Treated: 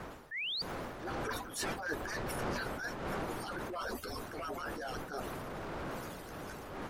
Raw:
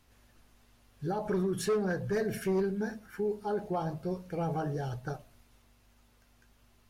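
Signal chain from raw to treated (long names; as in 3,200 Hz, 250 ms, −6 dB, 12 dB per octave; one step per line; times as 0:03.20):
harmonic-percussive split with one part muted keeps percussive
wind on the microphone 620 Hz −41 dBFS
source passing by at 0:01.86, 10 m/s, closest 5.9 metres
high-shelf EQ 2,300 Hz +9 dB
automatic gain control gain up to 12 dB
parametric band 1,400 Hz +4.5 dB 0.85 octaves
sound drawn into the spectrogram rise, 0:00.31–0:00.62, 1,700–4,800 Hz −33 dBFS
transient designer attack −8 dB, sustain +5 dB
reversed playback
downward compressor 6 to 1, threshold −56 dBFS, peak gain reduction 36 dB
reversed playback
level +17 dB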